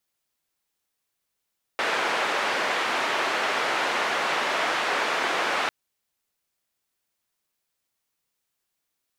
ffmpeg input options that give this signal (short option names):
-f lavfi -i "anoisesrc=c=white:d=3.9:r=44100:seed=1,highpass=f=430,lowpass=f=1900,volume=-9.4dB"